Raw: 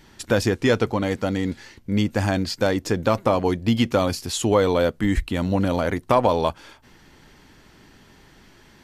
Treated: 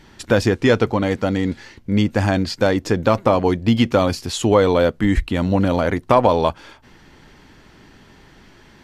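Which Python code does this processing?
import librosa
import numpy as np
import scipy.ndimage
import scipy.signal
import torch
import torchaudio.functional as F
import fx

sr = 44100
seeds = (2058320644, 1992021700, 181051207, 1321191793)

y = fx.high_shelf(x, sr, hz=7400.0, db=-9.5)
y = F.gain(torch.from_numpy(y), 4.0).numpy()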